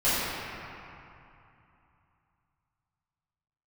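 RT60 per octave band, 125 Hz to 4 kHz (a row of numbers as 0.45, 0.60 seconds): 3.7, 3.0, 2.5, 3.1, 2.6, 1.7 seconds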